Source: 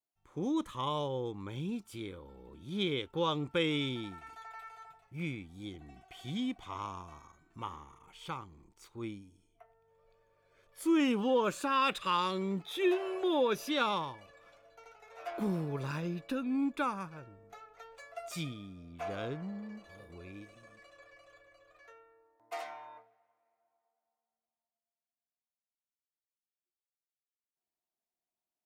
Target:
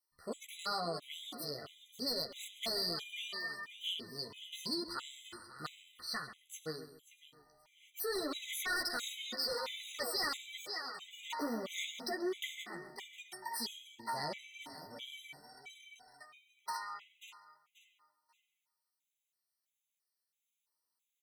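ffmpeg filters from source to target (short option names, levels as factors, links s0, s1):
-filter_complex "[0:a]tiltshelf=f=970:g=-8.5,asplit=2[s0][s1];[s1]aecho=0:1:723|1446|2169:0.168|0.0487|0.0141[s2];[s0][s2]amix=inputs=2:normalize=0,flanger=delay=16:depth=2.7:speed=0.75,asoftclip=type=hard:threshold=0.0211,acompressor=threshold=0.01:ratio=6,asplit=2[s3][s4];[s4]adelay=183,lowpass=f=1900:p=1,volume=0.282,asplit=2[s5][s6];[s6]adelay=183,lowpass=f=1900:p=1,volume=0.32,asplit=2[s7][s8];[s8]adelay=183,lowpass=f=1900:p=1,volume=0.32[s9];[s5][s7][s9]amix=inputs=3:normalize=0[s10];[s3][s10]amix=inputs=2:normalize=0,asetrate=59535,aresample=44100,asuperstop=centerf=1600:order=8:qfactor=7.8,afftfilt=real='re*gt(sin(2*PI*1.5*pts/sr)*(1-2*mod(floor(b*sr/1024/2000),2)),0)':imag='im*gt(sin(2*PI*1.5*pts/sr)*(1-2*mod(floor(b*sr/1024/2000),2)),0)':win_size=1024:overlap=0.75,volume=2.37"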